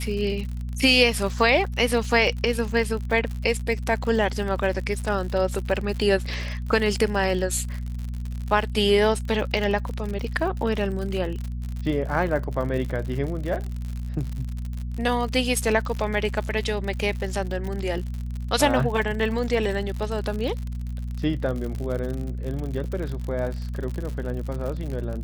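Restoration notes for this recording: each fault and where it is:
crackle 78/s -30 dBFS
hum 60 Hz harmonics 4 -30 dBFS

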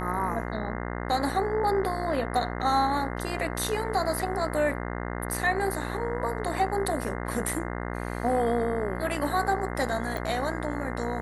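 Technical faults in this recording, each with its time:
buzz 60 Hz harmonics 35 -33 dBFS
10.17 pop

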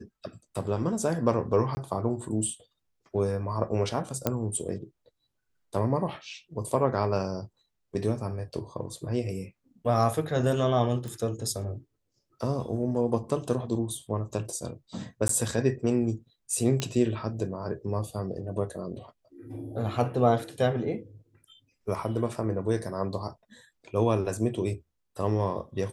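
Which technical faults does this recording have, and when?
1.75–1.77 gap 20 ms
4.27 pop -10 dBFS
11.08 pop
15.28–15.29 gap 13 ms
16.8 pop -14 dBFS

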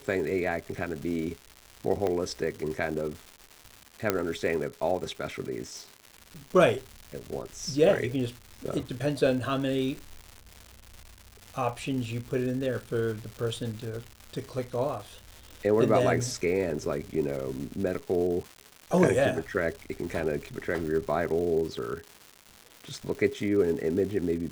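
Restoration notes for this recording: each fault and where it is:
crackle 340/s -36 dBFS
2.07 pop -17 dBFS
4.1 pop -9 dBFS

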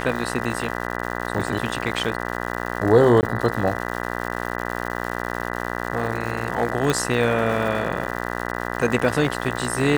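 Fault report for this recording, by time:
buzz 60 Hz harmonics 33 -28 dBFS
crackle 260/s -29 dBFS
3.21–3.23 gap 19 ms
6.9 pop

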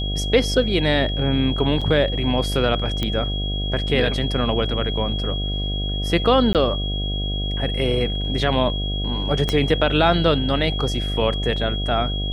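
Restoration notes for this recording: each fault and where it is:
buzz 50 Hz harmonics 15 -25 dBFS
tone 3300 Hz -28 dBFS
1.81–1.82 gap 5.4 ms
3.03 pop -10 dBFS
6.53–6.55 gap 18 ms
9.49 pop -8 dBFS

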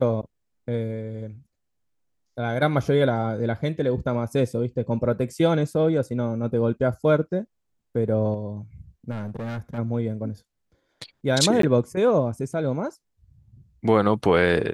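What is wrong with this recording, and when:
9.1–9.79 clipped -28 dBFS
11.62–11.63 gap 13 ms

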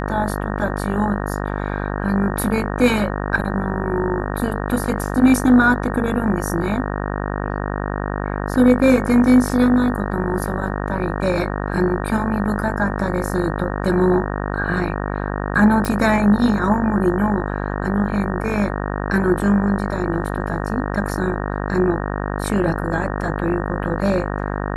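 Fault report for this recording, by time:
buzz 50 Hz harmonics 37 -24 dBFS
15.85 pop

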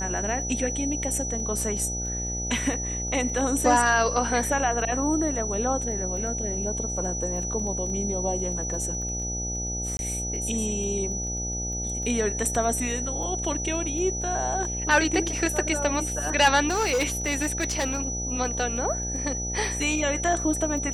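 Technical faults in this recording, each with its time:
buzz 60 Hz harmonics 14 -33 dBFS
crackle 10/s -34 dBFS
tone 5900 Hz -30 dBFS
9.97–9.99 gap 21 ms
16.68–18 clipped -20 dBFS

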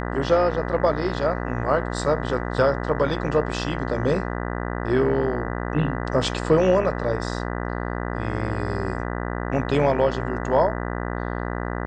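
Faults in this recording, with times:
buzz 60 Hz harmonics 33 -28 dBFS

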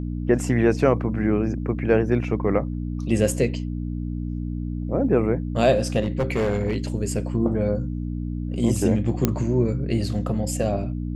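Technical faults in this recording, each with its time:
hum 60 Hz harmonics 5 -28 dBFS
6.02–6.76 clipped -18 dBFS
9.25 pop -5 dBFS

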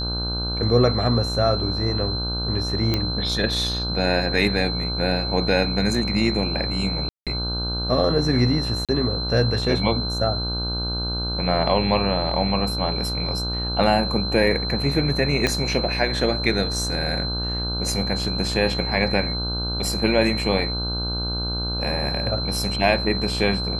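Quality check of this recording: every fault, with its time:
buzz 60 Hz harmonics 26 -28 dBFS
tone 4100 Hz -27 dBFS
2.94 pop -8 dBFS
7.09–7.27 gap 0.177 s
8.85–8.89 gap 37 ms
15.47 pop -7 dBFS

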